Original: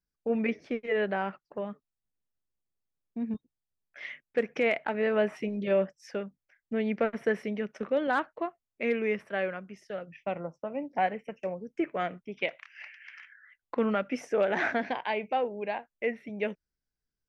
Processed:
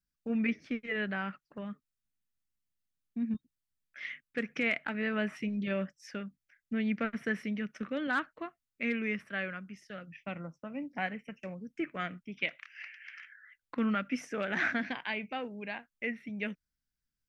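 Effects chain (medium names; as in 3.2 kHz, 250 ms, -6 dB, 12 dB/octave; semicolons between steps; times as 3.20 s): high-order bell 600 Hz -11 dB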